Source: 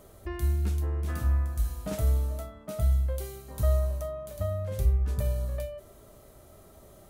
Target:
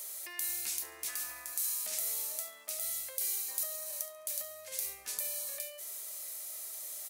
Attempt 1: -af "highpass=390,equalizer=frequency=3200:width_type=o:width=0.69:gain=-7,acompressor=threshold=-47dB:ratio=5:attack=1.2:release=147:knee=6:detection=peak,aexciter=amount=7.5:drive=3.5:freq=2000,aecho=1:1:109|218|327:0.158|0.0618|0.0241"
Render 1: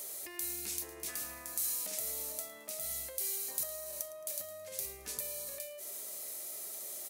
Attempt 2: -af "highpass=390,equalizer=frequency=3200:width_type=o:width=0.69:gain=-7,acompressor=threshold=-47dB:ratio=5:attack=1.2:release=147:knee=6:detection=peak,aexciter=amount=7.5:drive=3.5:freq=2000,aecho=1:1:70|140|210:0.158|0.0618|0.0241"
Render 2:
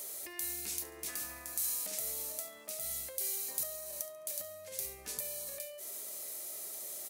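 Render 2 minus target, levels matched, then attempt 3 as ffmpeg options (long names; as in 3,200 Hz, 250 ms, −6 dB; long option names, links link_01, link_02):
500 Hz band +5.0 dB
-af "highpass=860,equalizer=frequency=3200:width_type=o:width=0.69:gain=-7,acompressor=threshold=-47dB:ratio=5:attack=1.2:release=147:knee=6:detection=peak,aexciter=amount=7.5:drive=3.5:freq=2000,aecho=1:1:70|140|210:0.158|0.0618|0.0241"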